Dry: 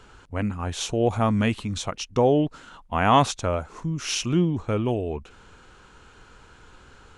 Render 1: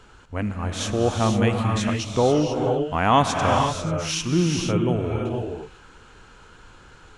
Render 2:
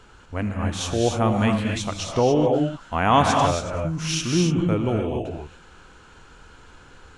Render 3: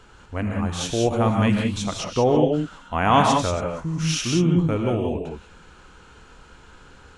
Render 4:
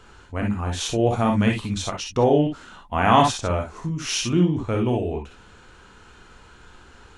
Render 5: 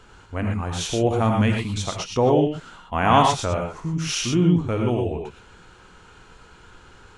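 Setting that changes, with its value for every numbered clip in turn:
non-linear reverb, gate: 520, 310, 210, 80, 140 ms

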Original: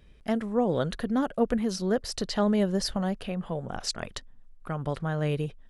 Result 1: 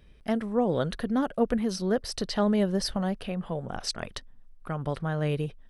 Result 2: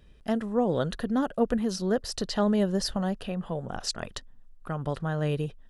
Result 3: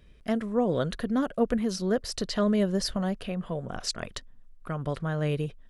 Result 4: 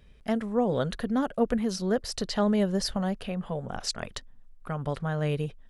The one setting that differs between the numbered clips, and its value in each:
notch, frequency: 7000, 2200, 830, 330 Hz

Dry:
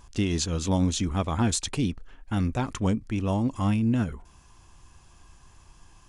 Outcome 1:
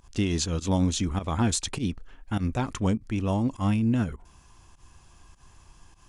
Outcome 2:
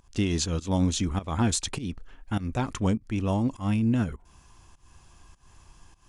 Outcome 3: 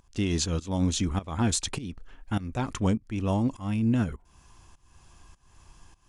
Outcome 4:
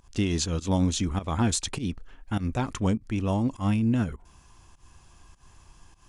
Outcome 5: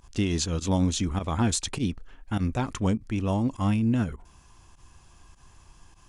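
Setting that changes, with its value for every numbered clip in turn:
pump, release: 98, 232, 405, 147, 65 ms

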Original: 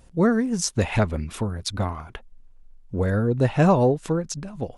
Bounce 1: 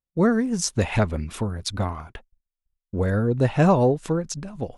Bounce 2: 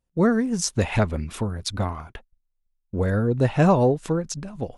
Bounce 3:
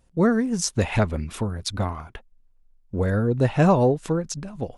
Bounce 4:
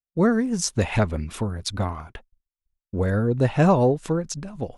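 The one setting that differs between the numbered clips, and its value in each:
gate, range: -42, -27, -10, -54 dB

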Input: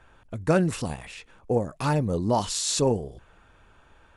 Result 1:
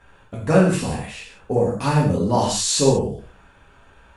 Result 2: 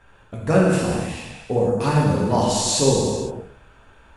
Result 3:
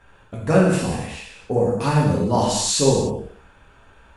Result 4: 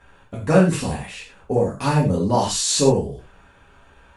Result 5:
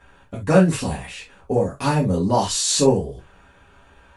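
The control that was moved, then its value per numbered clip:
non-linear reverb, gate: 210, 530, 330, 140, 90 ms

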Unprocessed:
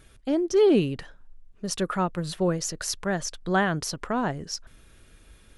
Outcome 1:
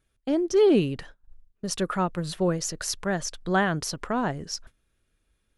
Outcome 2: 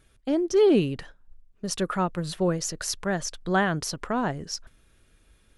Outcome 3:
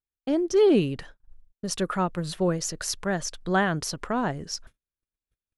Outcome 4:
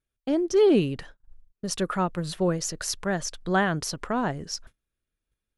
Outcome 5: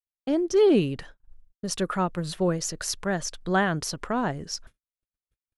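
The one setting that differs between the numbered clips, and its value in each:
gate, range: -19, -7, -45, -32, -60 dB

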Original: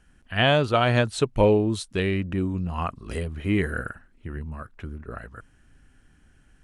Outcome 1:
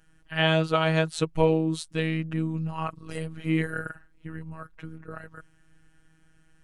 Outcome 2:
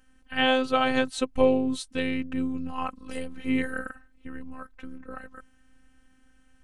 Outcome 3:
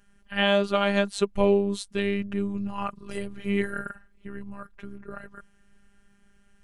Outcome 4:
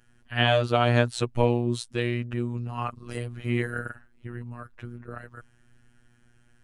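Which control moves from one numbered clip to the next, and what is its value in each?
robotiser, frequency: 160, 260, 200, 120 Hz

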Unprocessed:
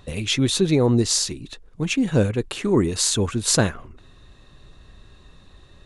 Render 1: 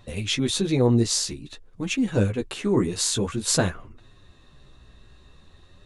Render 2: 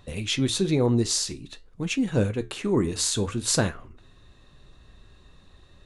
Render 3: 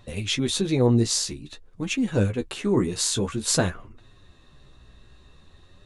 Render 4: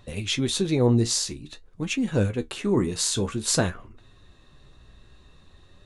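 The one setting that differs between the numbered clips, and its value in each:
flange, regen: -5, -70, +21, +52%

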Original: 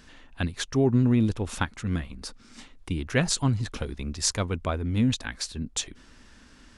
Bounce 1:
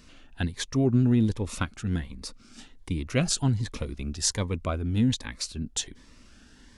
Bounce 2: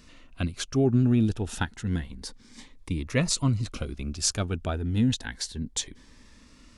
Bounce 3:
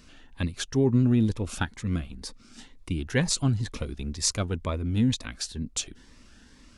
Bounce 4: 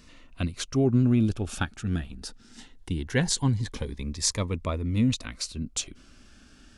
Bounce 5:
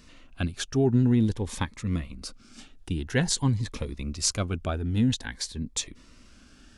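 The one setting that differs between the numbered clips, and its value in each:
cascading phaser, rate: 1.3, 0.3, 2.1, 0.2, 0.5 Hz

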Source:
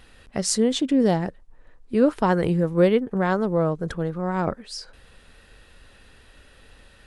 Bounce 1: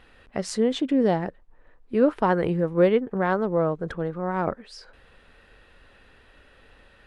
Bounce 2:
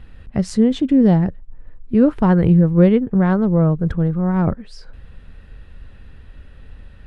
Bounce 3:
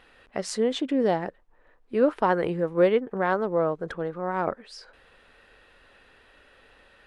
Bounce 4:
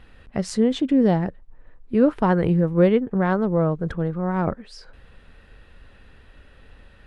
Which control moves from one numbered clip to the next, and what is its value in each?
tone controls, bass: -5, +14, -13, +4 dB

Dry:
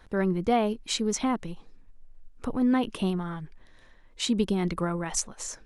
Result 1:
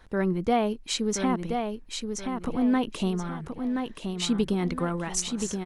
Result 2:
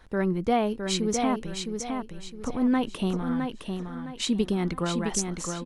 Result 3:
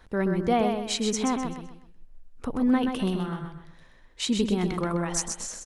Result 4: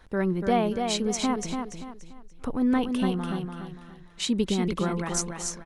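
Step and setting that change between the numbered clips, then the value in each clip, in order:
feedback echo, time: 1.026, 0.662, 0.128, 0.289 s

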